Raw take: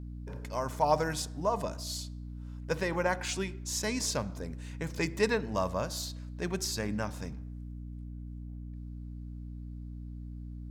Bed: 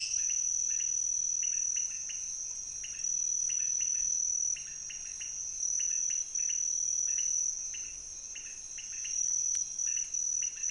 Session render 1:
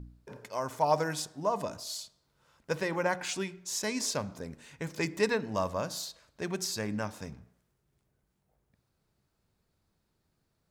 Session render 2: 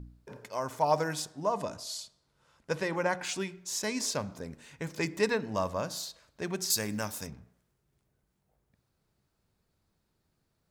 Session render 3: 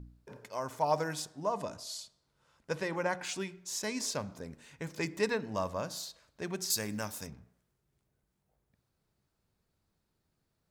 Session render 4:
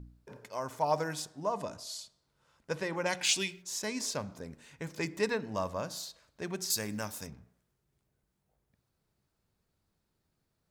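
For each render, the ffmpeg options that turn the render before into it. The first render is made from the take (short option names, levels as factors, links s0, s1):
-af "bandreject=f=60:t=h:w=4,bandreject=f=120:t=h:w=4,bandreject=f=180:t=h:w=4,bandreject=f=240:t=h:w=4,bandreject=f=300:t=h:w=4"
-filter_complex "[0:a]asettb=1/sr,asplit=3[s0][s1][s2];[s0]atrim=end=1.314[s3];[s1]atrim=start=1.31:end=3.23,asetpts=PTS-STARTPTS,afade=t=in:d=0.004:c=qsin,afade=t=out:st=1.916:d=0.004:c=qsin,lowpass=f=12000:w=0.5412,lowpass=f=12000:w=1.3066[s4];[s2]atrim=start=3.226[s5];[s3][s4]acrossfade=d=0.004:c1=hsin:c2=qsin[s6];[s6][s5]acrossfade=d=0.004:c1=qsin:c2=hsin,asettb=1/sr,asplit=3[s7][s8][s9];[s7]atrim=end=6.704[s10];[s8]atrim=start=6.7:end=7.27,asetpts=PTS-STARTPTS,afade=t=in:d=0.004:c=qsin,afade=t=out:st=0.566:d=0.004:c=qsin,aemphasis=mode=production:type=75fm[s11];[s9]atrim=start=7.266[s12];[s10][s11]acrossfade=d=0.004:c1=hsin:c2=qsin[s13];[s13][s12]acrossfade=d=0.004:c1=qsin:c2=hsin"
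-af "volume=0.708"
-filter_complex "[0:a]asplit=3[s0][s1][s2];[s0]afade=t=out:st=3.05:d=0.02[s3];[s1]highshelf=f=2000:t=q:w=1.5:g=10.5,afade=t=in:st=3.05:d=0.02,afade=t=out:st=3.61:d=0.02[s4];[s2]afade=t=in:st=3.61:d=0.02[s5];[s3][s4][s5]amix=inputs=3:normalize=0"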